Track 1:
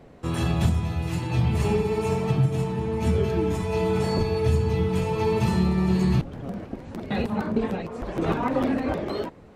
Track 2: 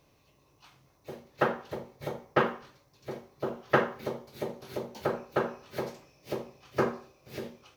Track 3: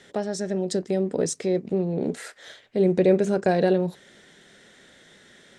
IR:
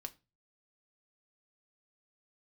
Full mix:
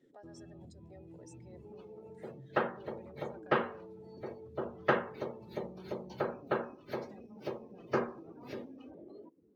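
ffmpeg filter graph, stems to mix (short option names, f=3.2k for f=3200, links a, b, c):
-filter_complex "[0:a]equalizer=f=320:t=o:w=1.1:g=10.5,acompressor=threshold=-20dB:ratio=6,volume=-19.5dB[a];[1:a]adelay=1150,volume=-4dB[b];[2:a]highpass=800,alimiter=limit=-24dB:level=0:latency=1:release=203,volume=-13dB[c];[a][c]amix=inputs=2:normalize=0,aeval=exprs='0.0168*(abs(mod(val(0)/0.0168+3,4)-2)-1)':c=same,alimiter=level_in=19dB:limit=-24dB:level=0:latency=1:release=245,volume=-19dB,volume=0dB[d];[b][d]amix=inputs=2:normalize=0,afftdn=nr=18:nf=-55,lowshelf=f=61:g=-12"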